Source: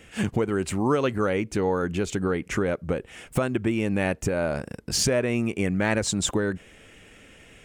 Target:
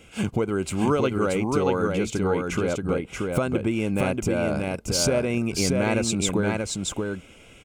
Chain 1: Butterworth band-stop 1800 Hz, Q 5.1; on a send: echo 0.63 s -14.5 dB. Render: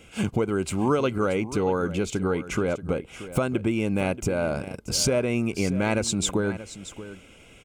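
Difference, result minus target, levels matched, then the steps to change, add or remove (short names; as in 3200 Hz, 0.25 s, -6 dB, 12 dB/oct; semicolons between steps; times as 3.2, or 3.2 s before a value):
echo-to-direct -11 dB
change: echo 0.63 s -3.5 dB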